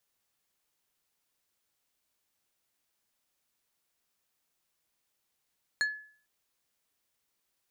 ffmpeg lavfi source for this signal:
-f lavfi -i "aevalsrc='0.0708*pow(10,-3*t/0.49)*sin(2*PI*1710*t)+0.0335*pow(10,-3*t/0.163)*sin(2*PI*4275*t)+0.0158*pow(10,-3*t/0.093)*sin(2*PI*6840*t)+0.0075*pow(10,-3*t/0.071)*sin(2*PI*8550*t)+0.00355*pow(10,-3*t/0.052)*sin(2*PI*11115*t)':d=0.45:s=44100"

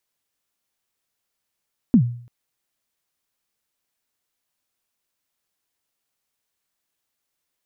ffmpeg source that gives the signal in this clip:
-f lavfi -i "aevalsrc='0.447*pow(10,-3*t/0.52)*sin(2*PI*(270*0.083/log(120/270)*(exp(log(120/270)*min(t,0.083)/0.083)-1)+120*max(t-0.083,0)))':d=0.34:s=44100"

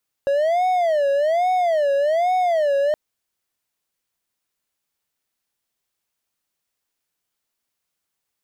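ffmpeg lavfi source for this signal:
-f lavfi -i "aevalsrc='0.2*(1-4*abs(mod((647.5*t-92.5/(2*PI*1.2)*sin(2*PI*1.2*t))+0.25,1)-0.5))':d=2.67:s=44100"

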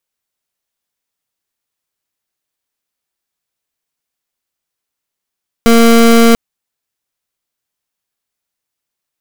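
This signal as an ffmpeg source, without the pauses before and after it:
-f lavfi -i "aevalsrc='0.501*(2*lt(mod(231*t,1),0.26)-1)':d=0.69:s=44100"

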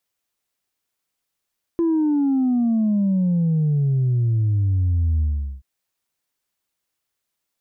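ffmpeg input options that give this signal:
-f lavfi -i "aevalsrc='0.15*clip((3.83-t)/0.41,0,1)*tanh(1.06*sin(2*PI*340*3.83/log(65/340)*(exp(log(65/340)*t/3.83)-1)))/tanh(1.06)':d=3.83:s=44100"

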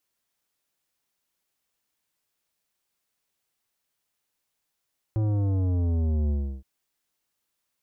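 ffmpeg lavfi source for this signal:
-f lavfi -i "aevalsrc='0.0708*clip((1.47-t)/0.33,0,1)*tanh(3.98*sin(2*PI*110*1.47/log(65/110)*(exp(log(65/110)*t/1.47)-1)))/tanh(3.98)':d=1.47:s=44100"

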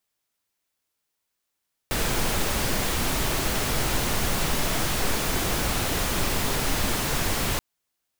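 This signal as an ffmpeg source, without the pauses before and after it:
-f lavfi -i "anoisesrc=c=pink:a=0.305:d=5.68:r=44100:seed=1"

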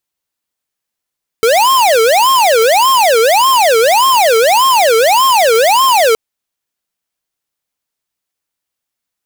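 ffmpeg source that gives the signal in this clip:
-f lavfi -i "aevalsrc='0.355*(2*lt(mod((756.5*t-313.5/(2*PI*1.7)*sin(2*PI*1.7*t)),1),0.5)-1)':d=4.72:s=44100"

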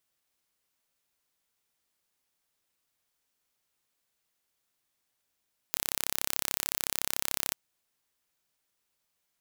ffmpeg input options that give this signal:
-f lavfi -i "aevalsrc='0.794*eq(mod(n,1309),0)':d=1.8:s=44100"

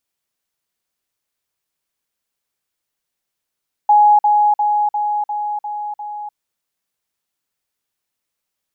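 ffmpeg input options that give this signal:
-f lavfi -i "aevalsrc='pow(10,(-7-3*floor(t/0.35))/20)*sin(2*PI*835*t)*clip(min(mod(t,0.35),0.3-mod(t,0.35))/0.005,0,1)':d=2.45:s=44100"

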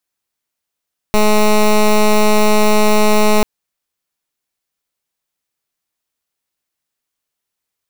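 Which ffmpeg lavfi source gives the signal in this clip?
-f lavfi -i "aevalsrc='0.316*(2*lt(mod(212*t,1),0.13)-1)':d=2.29:s=44100"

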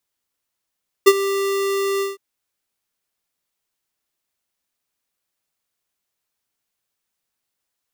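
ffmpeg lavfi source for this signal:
-f lavfi -i "aevalsrc='0.473*(2*lt(mod(394*t,1),0.5)-1)':d=1.112:s=44100,afade=t=in:d=0.017,afade=t=out:st=0.017:d=0.046:silence=0.188,afade=t=out:st=0.95:d=0.162"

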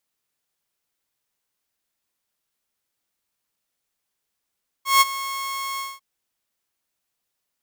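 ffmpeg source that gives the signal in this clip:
-f lavfi -i "aevalsrc='0.398*(2*mod(1090*t,1)-1)':d=1.147:s=44100,afade=t=in:d=0.16,afade=t=out:st=0.16:d=0.028:silence=0.158,afade=t=out:st=0.94:d=0.207"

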